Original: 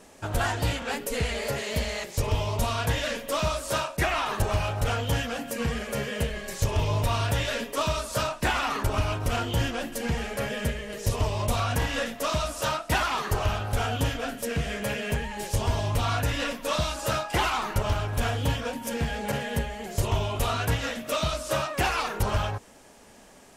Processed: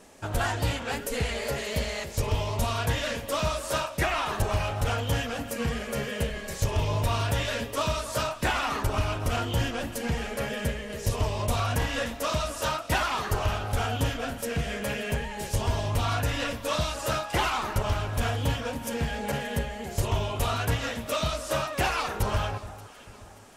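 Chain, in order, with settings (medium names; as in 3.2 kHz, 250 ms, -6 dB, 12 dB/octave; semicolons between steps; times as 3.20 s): echo whose repeats swap between lows and highs 290 ms, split 1.3 kHz, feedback 61%, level -13.5 dB; trim -1 dB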